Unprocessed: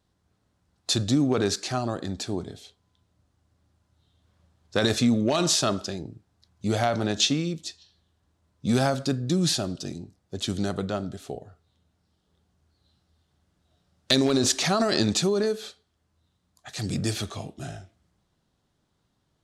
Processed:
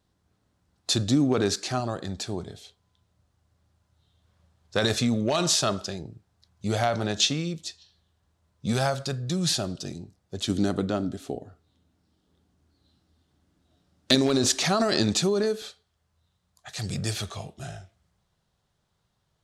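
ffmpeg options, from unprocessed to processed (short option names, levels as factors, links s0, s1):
-af "asetnsamples=n=441:p=0,asendcmd='1.8 equalizer g -6;8.73 equalizer g -13.5;9.5 equalizer g -3.5;10.49 equalizer g 8;14.15 equalizer g -1;15.62 equalizer g -11.5',equalizer=f=280:t=o:w=0.64:g=0.5"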